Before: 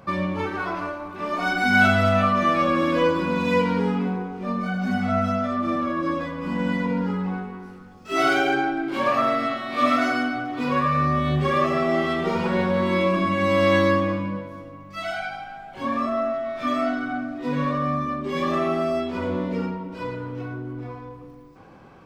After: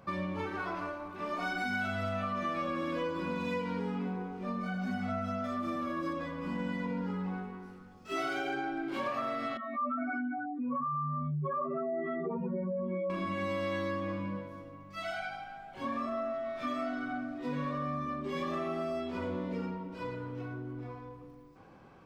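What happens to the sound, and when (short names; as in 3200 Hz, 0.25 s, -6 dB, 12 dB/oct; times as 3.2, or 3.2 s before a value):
5.44–6.13 high shelf 6600 Hz +12 dB
9.57–13.1 spectral contrast raised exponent 2.9
whole clip: compressor, threshold -23 dBFS; gain -8 dB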